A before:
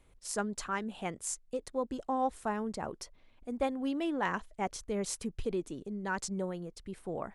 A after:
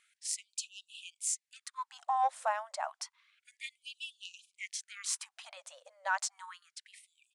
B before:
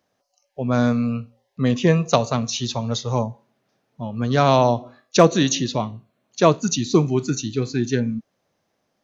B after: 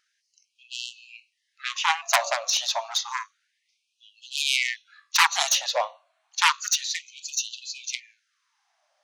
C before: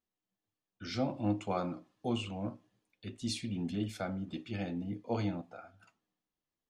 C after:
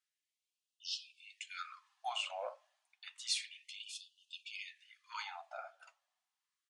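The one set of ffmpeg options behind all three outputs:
-af "aresample=22050,aresample=44100,aeval=exprs='0.944*(cos(1*acos(clip(val(0)/0.944,-1,1)))-cos(1*PI/2))+0.075*(cos(3*acos(clip(val(0)/0.944,-1,1)))-cos(3*PI/2))+0.0422*(cos(5*acos(clip(val(0)/0.944,-1,1)))-cos(5*PI/2))+0.0944*(cos(6*acos(clip(val(0)/0.944,-1,1)))-cos(6*PI/2))+0.473*(cos(7*acos(clip(val(0)/0.944,-1,1)))-cos(7*PI/2))':c=same,afftfilt=real='re*gte(b*sr/1024,510*pow(2600/510,0.5+0.5*sin(2*PI*0.3*pts/sr)))':imag='im*gte(b*sr/1024,510*pow(2600/510,0.5+0.5*sin(2*PI*0.3*pts/sr)))':win_size=1024:overlap=0.75,volume=-4dB"

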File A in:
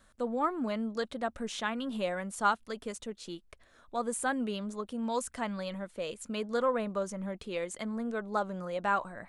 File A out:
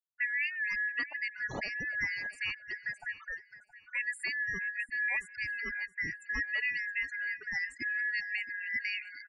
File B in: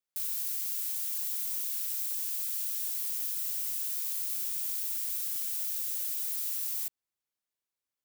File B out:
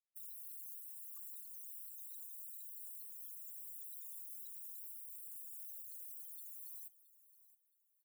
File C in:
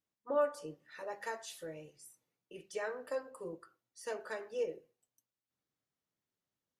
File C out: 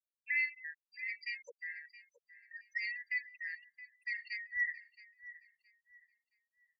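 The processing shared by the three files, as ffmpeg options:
-af "afftfilt=real='real(if(lt(b,272),68*(eq(floor(b/68),0)*2+eq(floor(b/68),1)*0+eq(floor(b/68),2)*3+eq(floor(b/68),3)*1)+mod(b,68),b),0)':imag='imag(if(lt(b,272),68*(eq(floor(b/68),0)*2+eq(floor(b/68),1)*0+eq(floor(b/68),2)*3+eq(floor(b/68),3)*1)+mod(b,68),b),0)':win_size=2048:overlap=0.75,afftfilt=real='re*gte(hypot(re,im),0.0158)':imag='im*gte(hypot(re,im),0.0158)':win_size=1024:overlap=0.75,alimiter=level_in=0.5dB:limit=-24dB:level=0:latency=1:release=398,volume=-0.5dB,lowpass=f=1.2k:p=1,aecho=1:1:670|1340|2010:0.141|0.0381|0.0103,volume=6.5dB"

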